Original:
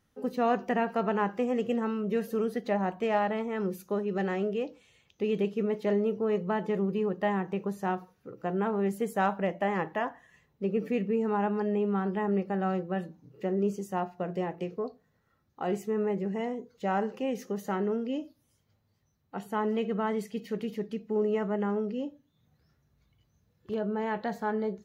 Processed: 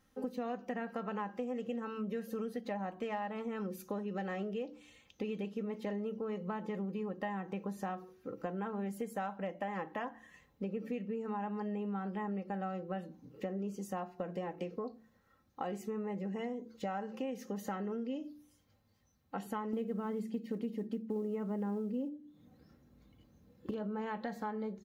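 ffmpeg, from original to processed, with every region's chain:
-filter_complex "[0:a]asettb=1/sr,asplit=3[a][b][c];[a]atrim=end=19.734[d];[b]atrim=start=19.73:end=23.71,asetpts=PTS-STARTPTS,afade=t=in:d=0.004:c=qsin,afade=t=out:st=3.976:d=0.004:c=qsin,bandreject=f=6k:w=17,acrusher=bits=8:mode=log:mix=0:aa=0.000001,equalizer=f=290:t=o:w=2.4:g=12[e];[c]atrim=start=23.706[f];[d][e]acrossfade=d=0.004:c1=hsin:c2=qsin[g];[g][f]acrossfade=d=0.004:c1=qsin:c2=hsin,aecho=1:1:3.8:0.46,bandreject=f=74.12:t=h:w=4,bandreject=f=148.24:t=h:w=4,bandreject=f=222.36:t=h:w=4,bandreject=f=296.48:t=h:w=4,bandreject=f=370.6:t=h:w=4,acompressor=threshold=-37dB:ratio=6,volume=1dB"

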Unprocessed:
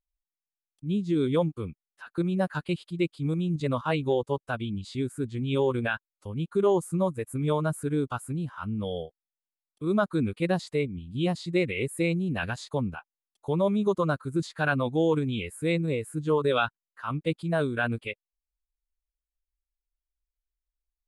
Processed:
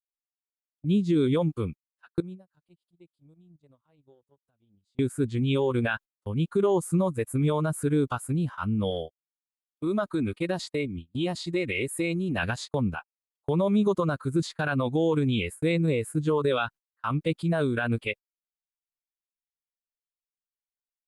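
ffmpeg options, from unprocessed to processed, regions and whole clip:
-filter_complex "[0:a]asettb=1/sr,asplit=3[a][b][c];[a]atrim=end=2.204[d];[b]atrim=start=2.2:end=4.99,asetpts=PTS-STARTPTS,afade=t=in:d=0.004:c=qsin,afade=t=out:st=2.786:d=0.004:c=qsin,equalizer=f=1.8k:w=0.48:g=-9,acompressor=threshold=-43dB:ratio=5:attack=3.2:release=140:knee=1:detection=peak[e];[c]atrim=start=4.986[f];[d][e]acrossfade=d=0.004:c1=hsin:c2=qsin[g];[g][f]acrossfade=d=0.004:c1=qsin:c2=hsin,asettb=1/sr,asplit=3[h][i][j];[h]atrim=end=8.904[k];[i]atrim=start=8.9:end=12.38,asetpts=PTS-STARTPTS,afade=t=in:d=0.004:c=qsin,afade=t=out:st=3.476:d=0.004:c=qsin,lowshelf=f=390:g=-2.5,aecho=1:1:3.2:0.31,atrim=end_sample=153468,acompressor=threshold=-29dB:ratio=3:attack=3.2:release=140:knee=1:detection=peak[l];[j]atrim=start=12.376[m];[k][l]acrossfade=d=0.004:c1=hsin:c2=qsin[n];[n][m]acrossfade=d=0.004:c1=qsin:c2=hsin,agate=range=-33dB:threshold=-40dB:ratio=16:detection=peak,alimiter=limit=-20.5dB:level=0:latency=1:release=88,volume=4.5dB"

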